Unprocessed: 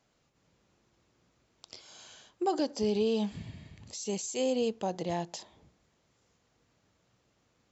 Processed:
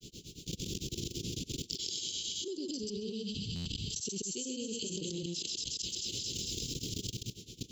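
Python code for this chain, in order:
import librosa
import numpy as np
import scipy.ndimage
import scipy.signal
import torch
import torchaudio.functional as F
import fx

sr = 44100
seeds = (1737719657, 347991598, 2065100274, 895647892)

y = fx.high_shelf(x, sr, hz=4300.0, db=8.5)
y = fx.auto_swell(y, sr, attack_ms=175.0)
y = fx.echo_wet_highpass(y, sr, ms=220, feedback_pct=51, hz=2100.0, wet_db=-3.5)
y = fx.level_steps(y, sr, step_db=23)
y = fx.granulator(y, sr, seeds[0], grain_ms=115.0, per_s=9.0, spray_ms=17.0, spread_st=0)
y = scipy.signal.sosfilt(scipy.signal.ellip(3, 1.0, 40, [400.0, 3100.0], 'bandstop', fs=sr, output='sos'), y)
y = fx.peak_eq(y, sr, hz=6800.0, db=-3.0, octaves=0.77)
y = y + 10.0 ** (-4.5 / 20.0) * np.pad(y, (int(131 * sr / 1000.0), 0))[:len(y)]
y = fx.buffer_glitch(y, sr, at_s=(3.55,), block=512, repeats=8)
y = fx.env_flatten(y, sr, amount_pct=100)
y = F.gain(torch.from_numpy(y), 8.0).numpy()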